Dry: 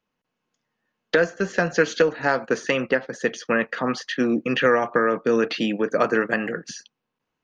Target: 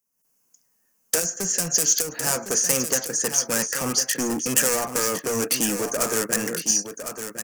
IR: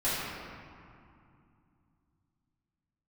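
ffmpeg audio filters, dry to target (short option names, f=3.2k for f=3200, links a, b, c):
-filter_complex "[0:a]volume=23dB,asoftclip=hard,volume=-23dB,asettb=1/sr,asplit=3[a][b][c];[a]atrim=end=1.194[d];[b]atrim=start=1.19:end=2.27,asetpts=PTS-STARTPTS,afade=t=in:d=0.004:c=qsin,afade=t=out:st=1.076:d=0.004:c=qsin,acrossover=split=250|3000[e][f][g];[f]acompressor=threshold=-31dB:ratio=6[h];[e][h][g]amix=inputs=3:normalize=0[i];[c]atrim=start=2.266[j];[d][i]acrossfade=d=0.004:c1=hsin:c2=qsin[k];[k][j]acrossfade=d=0.004:c1=qsin:c2=hsin,asplit=2[l][m];[m]aecho=0:1:1057:0.355[n];[l][n]amix=inputs=2:normalize=0,dynaudnorm=f=130:g=3:m=12dB,aexciter=amount=15.4:drive=7.6:freq=5.8k,volume=-12.5dB"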